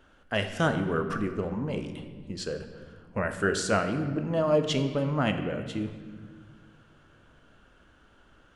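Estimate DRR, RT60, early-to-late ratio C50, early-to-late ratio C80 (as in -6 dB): 6.5 dB, 1.6 s, 8.5 dB, 10.0 dB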